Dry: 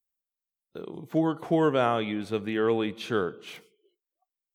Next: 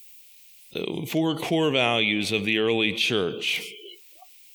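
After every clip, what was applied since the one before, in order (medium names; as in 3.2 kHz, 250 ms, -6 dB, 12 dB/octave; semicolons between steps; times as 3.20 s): resonant high shelf 1.9 kHz +9 dB, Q 3; level flattener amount 50%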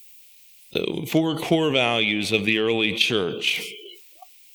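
transient shaper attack +8 dB, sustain +4 dB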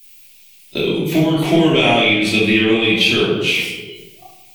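simulated room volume 340 m³, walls mixed, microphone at 2.8 m; trim -1.5 dB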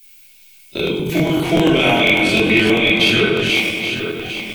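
backward echo that repeats 412 ms, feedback 63%, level -7 dB; small resonant body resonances 1.5/2.2 kHz, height 12 dB, ringing for 55 ms; crackling interface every 0.10 s, samples 1024, repeat; trim -1.5 dB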